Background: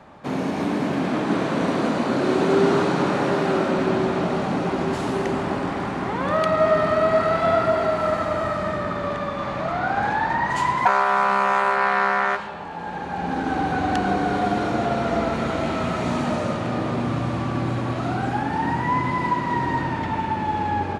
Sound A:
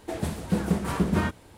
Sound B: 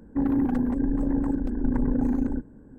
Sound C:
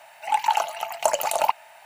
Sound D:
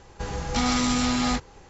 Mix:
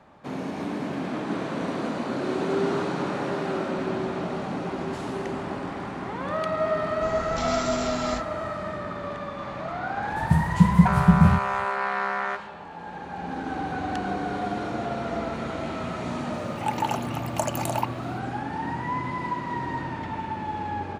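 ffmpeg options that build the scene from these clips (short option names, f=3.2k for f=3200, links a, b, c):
-filter_complex "[0:a]volume=-7dB[a];[1:a]lowshelf=f=220:t=q:w=3:g=11.5[b];[4:a]atrim=end=1.69,asetpts=PTS-STARTPTS,volume=-7dB,afade=t=in:d=0.004:c=hsin,afade=t=out:st=1.686:d=0.004:c=hsin,adelay=300762S[c];[b]atrim=end=1.57,asetpts=PTS-STARTPTS,volume=-5dB,afade=t=in:d=0.004:c=hsin,afade=t=out:st=1.566:d=0.004:c=hsin,adelay=10080[d];[3:a]atrim=end=1.85,asetpts=PTS-STARTPTS,volume=-6dB,afade=t=in:d=0.004:c=hsin,afade=t=out:st=1.846:d=0.004:c=hsin,adelay=16340[e];[a][c][d][e]amix=inputs=4:normalize=0"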